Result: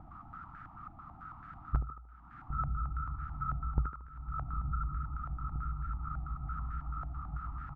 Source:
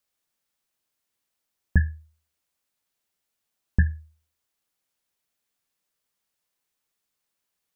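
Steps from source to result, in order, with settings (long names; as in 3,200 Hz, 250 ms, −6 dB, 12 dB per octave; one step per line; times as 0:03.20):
compressor on every frequency bin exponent 0.6
reverb reduction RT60 0.5 s
parametric band 130 Hz +3.5 dB 0.95 octaves
pitch shifter −5 semitones
Chebyshev band-stop filter 310–730 Hz, order 3
pitch vibrato 8 Hz 77 cents
feedback delay with all-pass diffusion 1,022 ms, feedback 57%, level −16 dB
downward compressor 4 to 1, threshold −48 dBFS, peak gain reduction 28.5 dB
feedback echo with a high-pass in the loop 76 ms, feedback 52%, high-pass 170 Hz, level −7 dB
low-pass on a step sequencer 9.1 Hz 720–1,600 Hz
level +13.5 dB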